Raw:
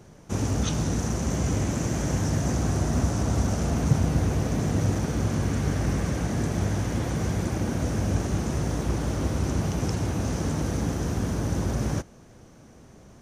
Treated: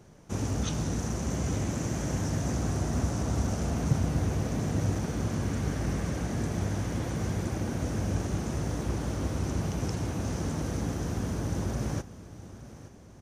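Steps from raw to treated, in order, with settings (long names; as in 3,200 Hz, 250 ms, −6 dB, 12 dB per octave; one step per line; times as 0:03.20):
repeating echo 871 ms, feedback 41%, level −16 dB
level −4.5 dB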